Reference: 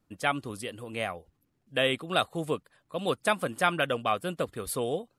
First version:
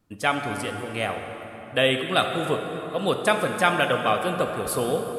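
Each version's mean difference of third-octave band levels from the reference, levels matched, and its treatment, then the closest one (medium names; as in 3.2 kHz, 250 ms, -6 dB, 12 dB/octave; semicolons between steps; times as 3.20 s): 6.5 dB: plate-style reverb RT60 4 s, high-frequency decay 0.55×, DRR 4 dB; trim +4.5 dB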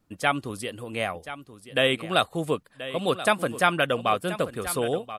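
1.5 dB: delay 1031 ms -13.5 dB; trim +4 dB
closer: second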